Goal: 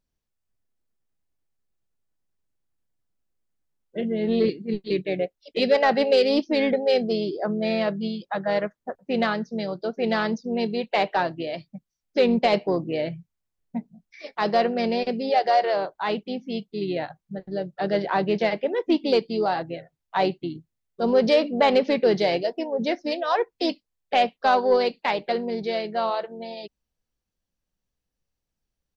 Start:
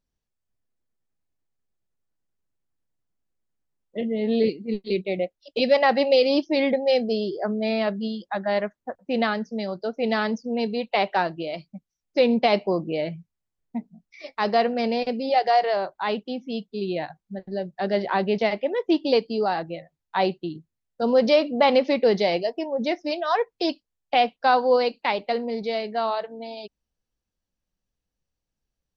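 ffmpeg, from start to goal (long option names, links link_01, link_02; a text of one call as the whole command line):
ffmpeg -i in.wav -filter_complex "[0:a]asoftclip=type=tanh:threshold=-8dB,asplit=2[link_01][link_02];[link_02]asetrate=35002,aresample=44100,atempo=1.25992,volume=-12dB[link_03];[link_01][link_03]amix=inputs=2:normalize=0" out.wav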